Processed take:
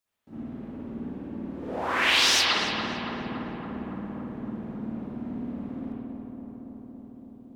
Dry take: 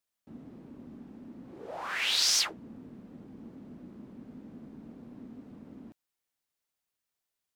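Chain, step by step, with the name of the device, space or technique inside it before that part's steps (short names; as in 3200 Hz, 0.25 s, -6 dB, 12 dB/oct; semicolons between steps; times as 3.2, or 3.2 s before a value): dub delay into a spring reverb (darkening echo 0.281 s, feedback 81%, low-pass 2000 Hz, level -5 dB; spring tank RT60 1.1 s, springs 53 ms, chirp 55 ms, DRR -9.5 dB)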